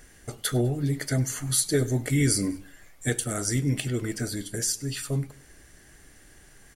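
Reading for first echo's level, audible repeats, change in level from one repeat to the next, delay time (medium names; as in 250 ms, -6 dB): -22.0 dB, 2, -5.5 dB, 100 ms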